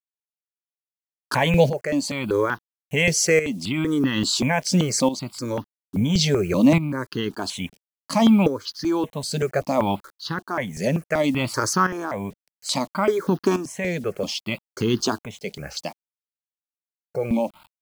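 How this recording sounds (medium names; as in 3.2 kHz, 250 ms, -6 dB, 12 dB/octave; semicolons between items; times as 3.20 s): a quantiser's noise floor 8-bit, dither none; tremolo saw up 0.59 Hz, depth 70%; notches that jump at a steady rate 5.2 Hz 310–2300 Hz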